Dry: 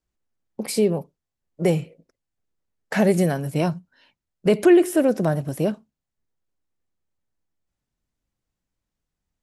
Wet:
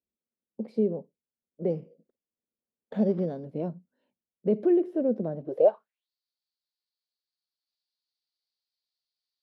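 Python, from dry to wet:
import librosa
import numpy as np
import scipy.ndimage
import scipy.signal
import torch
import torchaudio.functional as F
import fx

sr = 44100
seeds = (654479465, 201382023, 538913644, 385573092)

y = fx.sample_hold(x, sr, seeds[0], rate_hz=5200.0, jitter_pct=0, at=(1.7, 3.45))
y = fx.graphic_eq_10(y, sr, hz=(125, 250, 500, 4000, 8000), db=(-5, -10, 10, 8, -8))
y = fx.filter_sweep_bandpass(y, sr, from_hz=230.0, to_hz=4500.0, start_s=5.41, end_s=6.1, q=6.2)
y = F.gain(torch.from_numpy(y), 7.0).numpy()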